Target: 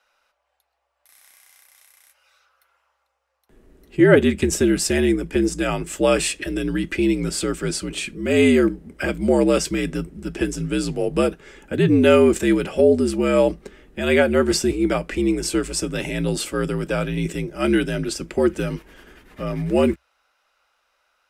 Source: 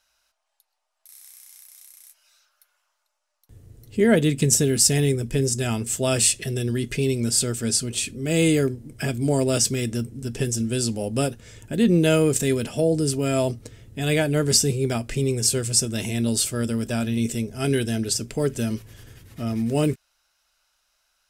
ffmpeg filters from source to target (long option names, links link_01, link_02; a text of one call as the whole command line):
ffmpeg -i in.wav -filter_complex "[0:a]afreqshift=-65,acrossover=split=220 2800:gain=0.2 1 0.178[link_01][link_02][link_03];[link_01][link_02][link_03]amix=inputs=3:normalize=0,volume=7.5dB" out.wav